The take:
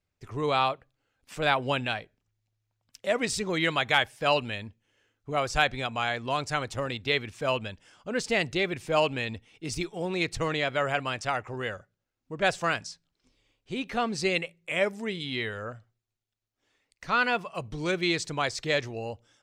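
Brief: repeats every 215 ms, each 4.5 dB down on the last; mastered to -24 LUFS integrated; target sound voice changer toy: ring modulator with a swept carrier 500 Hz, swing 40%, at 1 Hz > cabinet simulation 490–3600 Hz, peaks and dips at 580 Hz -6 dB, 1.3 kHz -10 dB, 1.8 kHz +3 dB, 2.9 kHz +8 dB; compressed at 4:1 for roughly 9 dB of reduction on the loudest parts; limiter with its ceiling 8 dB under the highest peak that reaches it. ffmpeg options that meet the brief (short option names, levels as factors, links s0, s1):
-af "acompressor=threshold=0.0316:ratio=4,alimiter=limit=0.0631:level=0:latency=1,aecho=1:1:215|430|645|860|1075|1290|1505|1720|1935:0.596|0.357|0.214|0.129|0.0772|0.0463|0.0278|0.0167|0.01,aeval=exprs='val(0)*sin(2*PI*500*n/s+500*0.4/1*sin(2*PI*1*n/s))':c=same,highpass=490,equalizer=f=580:t=q:w=4:g=-6,equalizer=f=1300:t=q:w=4:g=-10,equalizer=f=1800:t=q:w=4:g=3,equalizer=f=2900:t=q:w=4:g=8,lowpass=f=3600:w=0.5412,lowpass=f=3600:w=1.3066,volume=5.62"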